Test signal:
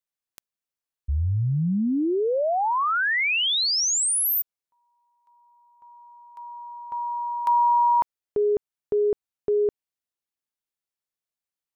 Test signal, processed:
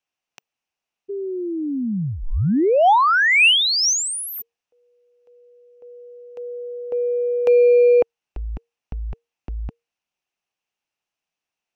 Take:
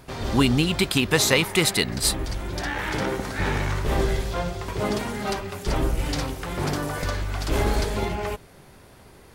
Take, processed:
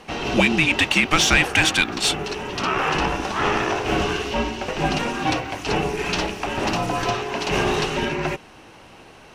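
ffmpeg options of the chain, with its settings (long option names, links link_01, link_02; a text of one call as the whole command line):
ffmpeg -i in.wav -filter_complex "[0:a]equalizer=frequency=400:width_type=o:width=0.33:gain=-11,equalizer=frequency=1250:width_type=o:width=0.33:gain=6,equalizer=frequency=3150:width_type=o:width=0.33:gain=11,equalizer=frequency=6300:width_type=o:width=0.33:gain=8,equalizer=frequency=12500:width_type=o:width=0.33:gain=-4,asplit=2[link_01][link_02];[link_02]highpass=frequency=720:poles=1,volume=13dB,asoftclip=type=tanh:threshold=-1dB[link_03];[link_01][link_03]amix=inputs=2:normalize=0,lowpass=frequency=2200:poles=1,volume=-6dB,acontrast=31,afreqshift=-470,volume=-4.5dB" out.wav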